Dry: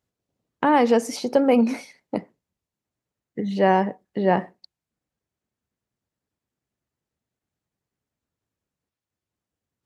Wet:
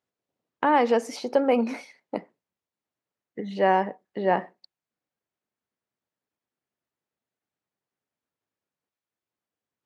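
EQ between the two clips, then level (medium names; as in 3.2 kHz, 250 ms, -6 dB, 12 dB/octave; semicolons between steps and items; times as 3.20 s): high-pass 470 Hz 6 dB/octave; treble shelf 5.1 kHz -11 dB; 0.0 dB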